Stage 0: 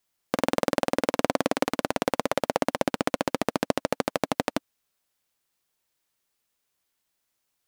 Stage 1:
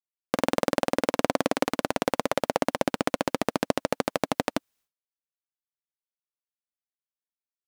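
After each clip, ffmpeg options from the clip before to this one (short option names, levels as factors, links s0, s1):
-af "agate=range=0.0224:threshold=0.00126:ratio=3:detection=peak"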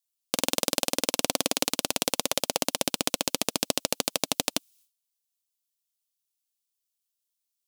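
-af "aexciter=amount=6.3:drive=4.2:freq=2600,volume=0.531"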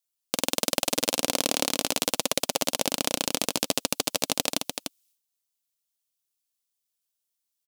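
-af "aecho=1:1:297:0.501"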